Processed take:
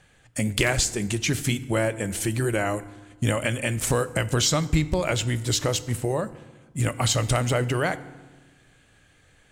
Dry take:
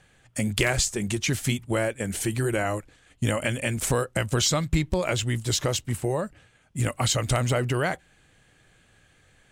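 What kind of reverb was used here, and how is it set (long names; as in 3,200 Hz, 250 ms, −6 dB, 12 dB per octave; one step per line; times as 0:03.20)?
feedback delay network reverb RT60 1.3 s, low-frequency decay 1.35×, high-frequency decay 0.65×, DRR 14 dB
level +1 dB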